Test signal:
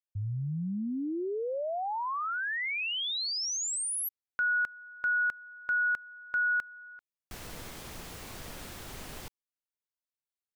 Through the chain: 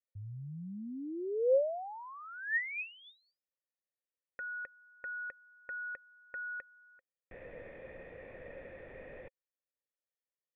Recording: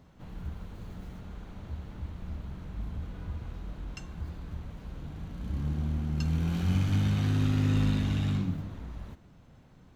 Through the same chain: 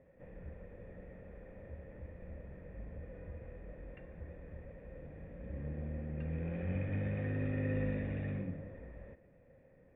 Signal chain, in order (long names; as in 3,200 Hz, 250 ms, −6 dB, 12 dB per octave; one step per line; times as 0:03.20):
formant resonators in series e
high-frequency loss of the air 120 metres
level +9.5 dB